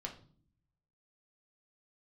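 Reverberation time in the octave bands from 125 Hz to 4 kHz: 1.2, 0.95, 0.55, 0.45, 0.35, 0.40 seconds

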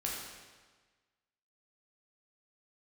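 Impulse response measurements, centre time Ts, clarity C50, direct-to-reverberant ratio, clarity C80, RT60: 76 ms, 0.5 dB, −4.0 dB, 2.5 dB, 1.4 s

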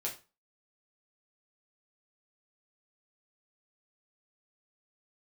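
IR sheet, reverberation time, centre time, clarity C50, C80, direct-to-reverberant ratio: 0.30 s, 18 ms, 10.5 dB, 16.5 dB, −3.0 dB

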